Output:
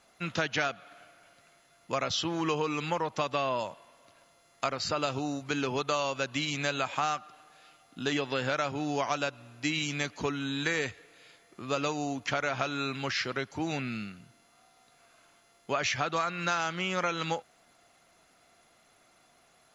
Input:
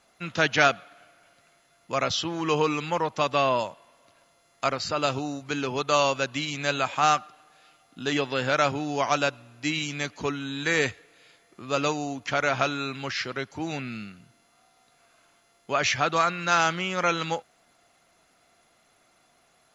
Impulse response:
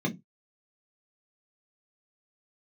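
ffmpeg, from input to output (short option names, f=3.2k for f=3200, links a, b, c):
-af "acompressor=threshold=-26dB:ratio=6"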